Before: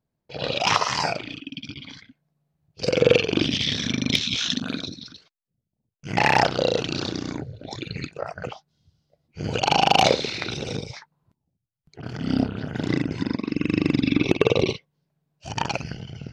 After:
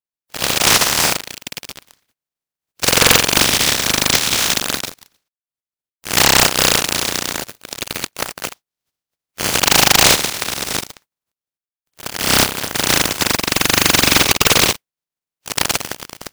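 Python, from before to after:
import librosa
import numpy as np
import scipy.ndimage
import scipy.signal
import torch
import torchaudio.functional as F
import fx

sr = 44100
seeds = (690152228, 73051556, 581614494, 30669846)

y = fx.spec_flatten(x, sr, power=0.18)
y = fx.leveller(y, sr, passes=5)
y = F.gain(torch.from_numpy(y), -8.0).numpy()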